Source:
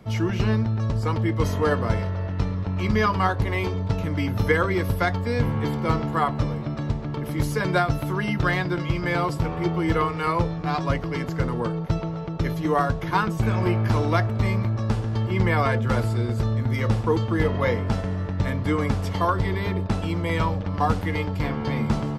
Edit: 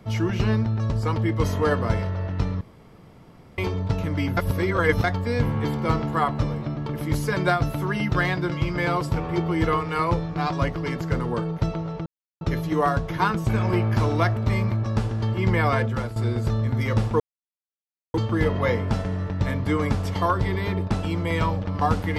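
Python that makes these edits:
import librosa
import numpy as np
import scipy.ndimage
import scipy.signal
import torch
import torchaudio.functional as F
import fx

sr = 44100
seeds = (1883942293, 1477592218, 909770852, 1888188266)

y = fx.edit(x, sr, fx.room_tone_fill(start_s=2.61, length_s=0.97),
    fx.reverse_span(start_s=4.37, length_s=0.67),
    fx.cut(start_s=6.77, length_s=0.28),
    fx.insert_silence(at_s=12.34, length_s=0.35),
    fx.fade_out_to(start_s=15.74, length_s=0.35, floor_db=-13.5),
    fx.insert_silence(at_s=17.13, length_s=0.94), tone=tone)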